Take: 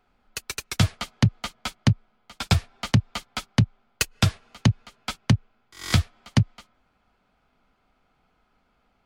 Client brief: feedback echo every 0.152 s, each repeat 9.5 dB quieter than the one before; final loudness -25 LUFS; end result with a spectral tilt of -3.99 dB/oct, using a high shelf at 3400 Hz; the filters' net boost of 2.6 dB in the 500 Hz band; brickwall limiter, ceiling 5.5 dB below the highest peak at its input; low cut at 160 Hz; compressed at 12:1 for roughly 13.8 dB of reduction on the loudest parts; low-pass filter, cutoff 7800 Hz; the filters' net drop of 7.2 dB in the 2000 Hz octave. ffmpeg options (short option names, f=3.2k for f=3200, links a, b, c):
-af "highpass=160,lowpass=7.8k,equalizer=f=500:t=o:g=4,equalizer=f=2k:t=o:g=-7,highshelf=f=3.4k:g=-7.5,acompressor=threshold=-31dB:ratio=12,alimiter=limit=-19.5dB:level=0:latency=1,aecho=1:1:152|304|456|608:0.335|0.111|0.0365|0.012,volume=16.5dB"